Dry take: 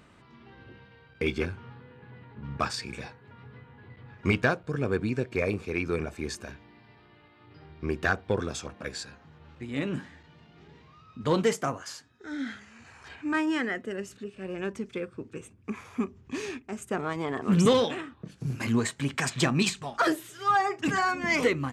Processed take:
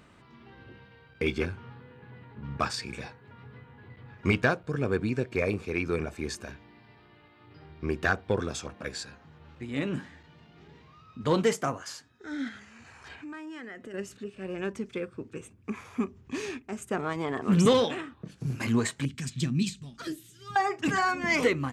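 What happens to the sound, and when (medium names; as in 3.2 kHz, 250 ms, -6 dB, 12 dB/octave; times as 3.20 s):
12.48–13.94 s: compression, threshold -39 dBFS
19.05–20.56 s: FFT filter 220 Hz 0 dB, 760 Hz -26 dB, 3.6 kHz -7 dB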